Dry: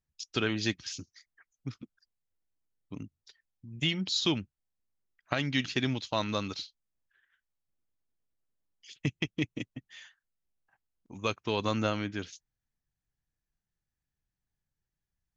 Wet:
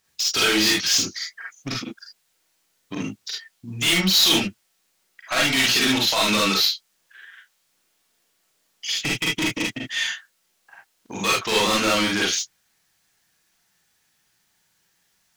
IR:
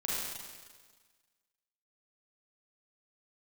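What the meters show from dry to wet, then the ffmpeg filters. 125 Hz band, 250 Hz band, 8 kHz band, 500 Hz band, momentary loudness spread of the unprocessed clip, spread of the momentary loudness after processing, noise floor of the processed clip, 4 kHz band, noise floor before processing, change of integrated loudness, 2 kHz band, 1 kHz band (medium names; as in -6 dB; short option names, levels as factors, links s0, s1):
+2.5 dB, +8.0 dB, no reading, +8.5 dB, 19 LU, 16 LU, -69 dBFS, +16.0 dB, under -85 dBFS, +12.0 dB, +14.5 dB, +11.5 dB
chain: -filter_complex "[0:a]asplit=2[s0][s1];[s1]highpass=f=720:p=1,volume=56.2,asoftclip=type=tanh:threshold=0.335[s2];[s0][s2]amix=inputs=2:normalize=0,lowpass=f=3400:p=1,volume=0.501,highshelf=f=3400:g=11.5[s3];[1:a]atrim=start_sample=2205,atrim=end_sample=3528[s4];[s3][s4]afir=irnorm=-1:irlink=0,volume=0.501"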